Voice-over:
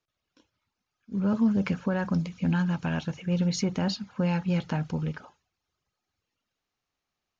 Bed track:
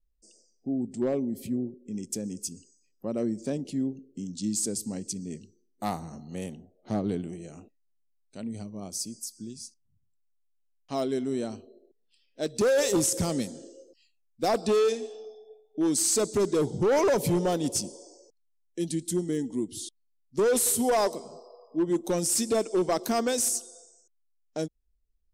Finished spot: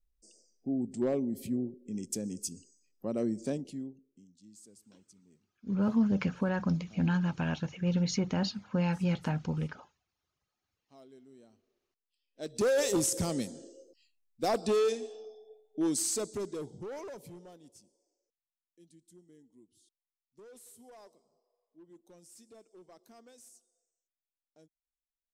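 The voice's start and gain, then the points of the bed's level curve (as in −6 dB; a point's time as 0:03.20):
4.55 s, −3.0 dB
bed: 0:03.51 −2.5 dB
0:04.37 −26.5 dB
0:11.85 −26.5 dB
0:12.63 −4 dB
0:15.86 −4 dB
0:17.78 −30 dB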